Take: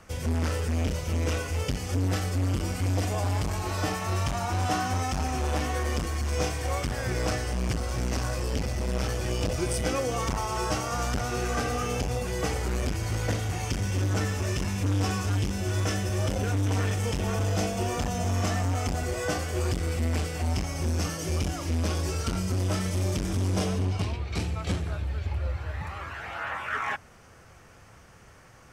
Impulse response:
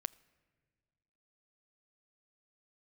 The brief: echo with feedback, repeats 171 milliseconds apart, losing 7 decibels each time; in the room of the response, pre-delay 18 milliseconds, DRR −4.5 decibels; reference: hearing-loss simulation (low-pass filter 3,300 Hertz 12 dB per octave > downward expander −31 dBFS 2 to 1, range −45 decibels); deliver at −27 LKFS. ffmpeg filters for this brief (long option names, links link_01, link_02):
-filter_complex "[0:a]aecho=1:1:171|342|513|684|855:0.447|0.201|0.0905|0.0407|0.0183,asplit=2[link_01][link_02];[1:a]atrim=start_sample=2205,adelay=18[link_03];[link_02][link_03]afir=irnorm=-1:irlink=0,volume=6.5dB[link_04];[link_01][link_04]amix=inputs=2:normalize=0,lowpass=3300,agate=range=-45dB:threshold=-31dB:ratio=2,volume=-3.5dB"